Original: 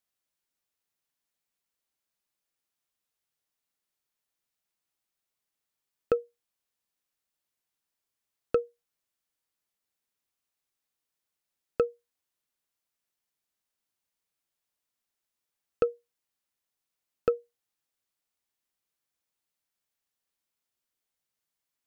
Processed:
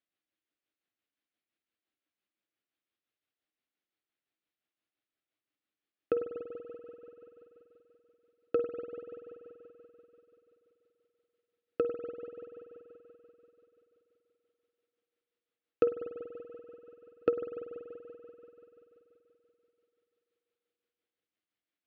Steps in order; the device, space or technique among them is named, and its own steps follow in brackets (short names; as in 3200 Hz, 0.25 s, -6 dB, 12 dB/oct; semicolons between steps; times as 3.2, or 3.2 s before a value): combo amplifier with spring reverb and tremolo (spring tank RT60 3.7 s, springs 48 ms, chirp 45 ms, DRR 7 dB; tremolo 5.8 Hz, depth 46%; speaker cabinet 91–3800 Hz, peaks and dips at 150 Hz -7 dB, 310 Hz +9 dB, 950 Hz -9 dB)